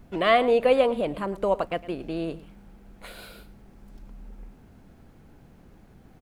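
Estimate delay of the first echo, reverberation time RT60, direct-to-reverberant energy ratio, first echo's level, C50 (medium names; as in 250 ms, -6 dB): 109 ms, no reverb, no reverb, -18.0 dB, no reverb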